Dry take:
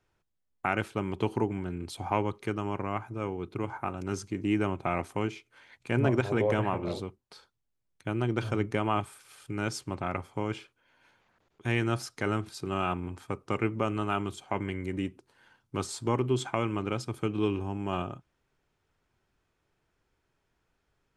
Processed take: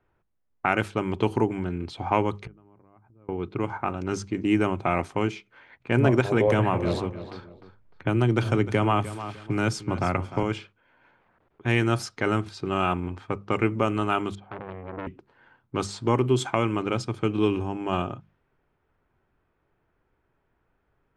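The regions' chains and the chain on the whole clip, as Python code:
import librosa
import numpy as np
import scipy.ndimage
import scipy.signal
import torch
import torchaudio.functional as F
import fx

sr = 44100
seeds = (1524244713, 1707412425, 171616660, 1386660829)

y = fx.chain(x, sr, fx.tilt_eq(slope=-2.5),
    fx.gate_flip(shuts_db=-32.0, range_db=-32),
    fx.pre_swell(db_per_s=86.0), at=(2.45, 3.29))
y = fx.chain(y, sr, fx.low_shelf(hz=110.0, db=7.0),
    fx.echo_feedback(ms=303, feedback_pct=21, wet_db=-15.0),
    fx.band_squash(depth_pct=40), at=(6.47, 10.43))
y = fx.chain(y, sr, fx.highpass(hz=59.0, slope=24),
    fx.spacing_loss(db_at_10k=43),
    fx.transformer_sat(knee_hz=2100.0), at=(14.35, 15.07))
y = fx.env_lowpass(y, sr, base_hz=1800.0, full_db=-24.5)
y = fx.hum_notches(y, sr, base_hz=50, count=4)
y = y * librosa.db_to_amplitude(5.5)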